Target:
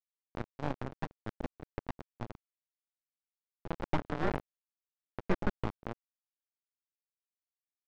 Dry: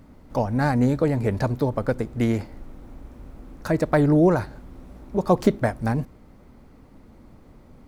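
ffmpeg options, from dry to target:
-filter_complex "[0:a]aeval=exprs='val(0)*sin(2*PI*420*n/s)':c=same,aderivative,asplit=2[a][b];[b]aecho=0:1:160:0.224[c];[a][c]amix=inputs=2:normalize=0,aeval=exprs='0.0596*(cos(1*acos(clip(val(0)/0.0596,-1,1)))-cos(1*PI/2))+0.00075*(cos(3*acos(clip(val(0)/0.0596,-1,1)))-cos(3*PI/2))+0.00237*(cos(4*acos(clip(val(0)/0.0596,-1,1)))-cos(4*PI/2))':c=same,acrusher=bits=5:mix=0:aa=0.000001,aresample=16000,aeval=exprs='abs(val(0))':c=same,aresample=44100,adynamicsmooth=sensitivity=2:basefreq=580,volume=14.5dB"

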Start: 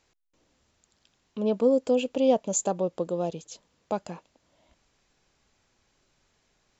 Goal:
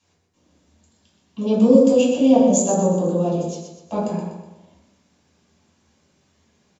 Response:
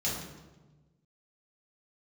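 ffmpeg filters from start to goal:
-filter_complex "[0:a]asettb=1/sr,asplit=3[a][b][c];[a]atrim=end=1.384[d];[b]atrim=start=1.38:end=2.16,asetpts=PTS-STARTPTS,afade=t=in:d=0.004:c=qsin,afade=t=out:st=0.776:d=0.004:c=qsin,equalizer=f=6.4k:w=1:g=9[e];[c]atrim=start=2.156[f];[d][e]acrossfade=d=0.004:c1=hsin:c2=qsin[g];[g][f]acrossfade=d=0.004:c1=qsin:c2=hsin,aecho=1:1:123|246|369|492|615:0.398|0.171|0.0736|0.0317|0.0136[h];[1:a]atrim=start_sample=2205,afade=t=out:st=0.35:d=0.01,atrim=end_sample=15876,asetrate=57330,aresample=44100[i];[h][i]afir=irnorm=-1:irlink=0"

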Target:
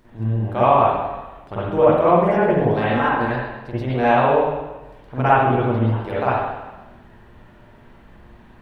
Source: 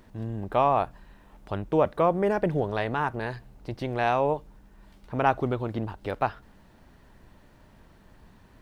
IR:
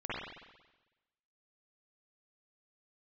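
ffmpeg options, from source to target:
-filter_complex "[0:a]asettb=1/sr,asplit=3[a][b][c];[a]atrim=end=2.714[d];[b]atrim=start=2.71:end=3.26,asetpts=PTS-STARTPTS,afade=t=in:d=0.004:c=qsin,afade=t=out:st=0.546:d=0.004:c=qsin,aecho=1:1:3.8:0.54,atrim=end_sample=24255[e];[c]atrim=start=3.256[f];[d][e]acrossfade=d=0.004:c1=hsin:c2=qsin[g];[g][f]acrossfade=d=0.004:c1=qsin:c2=hsin[h];[1:a]atrim=start_sample=2205[i];[h][i]afir=irnorm=-1:irlink=0,volume=3.5dB"

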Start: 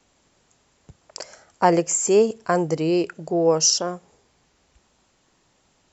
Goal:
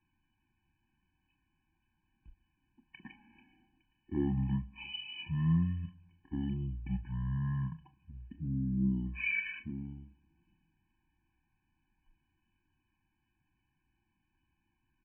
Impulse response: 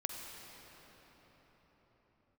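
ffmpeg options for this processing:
-filter_complex "[0:a]lowshelf=f=190:g=4.5,asetrate=17375,aresample=44100[a];[1:a]atrim=start_sample=2205,atrim=end_sample=3528,asetrate=79380,aresample=44100[b];[a][b]afir=irnorm=-1:irlink=0,afftfilt=real='re*eq(mod(floor(b*sr/1024/370),2),0)':imag='im*eq(mod(floor(b*sr/1024/370),2),0)':win_size=1024:overlap=0.75,volume=-8.5dB"

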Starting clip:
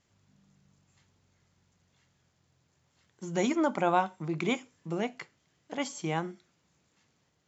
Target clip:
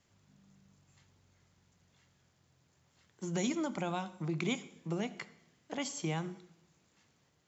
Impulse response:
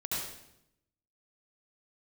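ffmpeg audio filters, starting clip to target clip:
-filter_complex "[0:a]acrossover=split=210|3000[a][b][c];[b]acompressor=threshold=-37dB:ratio=5[d];[a][d][c]amix=inputs=3:normalize=0,asplit=2[e][f];[1:a]atrim=start_sample=2205[g];[f][g]afir=irnorm=-1:irlink=0,volume=-21dB[h];[e][h]amix=inputs=2:normalize=0"

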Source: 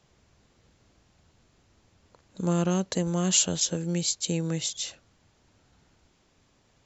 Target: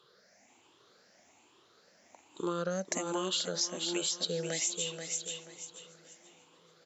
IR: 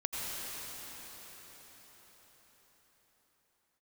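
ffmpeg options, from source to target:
-filter_complex "[0:a]afftfilt=real='re*pow(10,18/40*sin(2*PI*(0.63*log(max(b,1)*sr/1024/100)/log(2)-(1.2)*(pts-256)/sr)))':imag='im*pow(10,18/40*sin(2*PI*(0.63*log(max(b,1)*sr/1024/100)/log(2)-(1.2)*(pts-256)/sr)))':win_size=1024:overlap=0.75,highpass=370,asplit=2[a][b];[b]aecho=0:1:483|966|1449:0.355|0.0993|0.0278[c];[a][c]amix=inputs=2:normalize=0,acompressor=threshold=-30dB:ratio=6,asplit=2[d][e];[e]adelay=774,lowpass=f=3.4k:p=1,volume=-20dB,asplit=2[f][g];[g]adelay=774,lowpass=f=3.4k:p=1,volume=0.5,asplit=2[h][i];[i]adelay=774,lowpass=f=3.4k:p=1,volume=0.5,asplit=2[j][k];[k]adelay=774,lowpass=f=3.4k:p=1,volume=0.5[l];[f][h][j][l]amix=inputs=4:normalize=0[m];[d][m]amix=inputs=2:normalize=0"

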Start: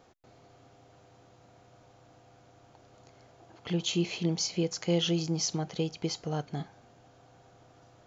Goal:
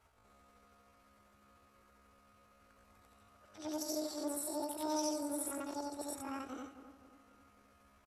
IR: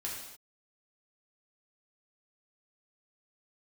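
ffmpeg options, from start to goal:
-filter_complex "[0:a]afftfilt=real='re':imag='-im':win_size=8192:overlap=0.75,adynamicequalizer=threshold=0.00355:dfrequency=410:dqfactor=3.5:tfrequency=410:tqfactor=3.5:attack=5:release=100:ratio=0.375:range=1.5:mode=cutabove:tftype=bell,asetrate=78577,aresample=44100,atempo=0.561231,lowshelf=f=120:t=q:w=3:g=9,asplit=2[a][b];[b]adelay=261,lowpass=f=1.4k:p=1,volume=-11dB,asplit=2[c][d];[d]adelay=261,lowpass=f=1.4k:p=1,volume=0.49,asplit=2[e][f];[f]adelay=261,lowpass=f=1.4k:p=1,volume=0.49,asplit=2[g][h];[h]adelay=261,lowpass=f=1.4k:p=1,volume=0.49,asplit=2[i][j];[j]adelay=261,lowpass=f=1.4k:p=1,volume=0.49[k];[a][c][e][g][i][k]amix=inputs=6:normalize=0,volume=-3.5dB"

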